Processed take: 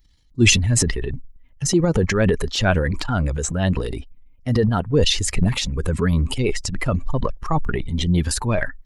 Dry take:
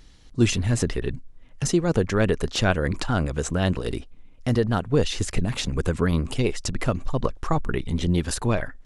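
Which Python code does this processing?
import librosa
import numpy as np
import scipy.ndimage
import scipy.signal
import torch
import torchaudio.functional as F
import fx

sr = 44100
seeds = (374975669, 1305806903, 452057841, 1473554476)

y = fx.bin_expand(x, sr, power=1.5)
y = fx.transient(y, sr, attack_db=-3, sustain_db=9)
y = y * 10.0 ** (6.0 / 20.0)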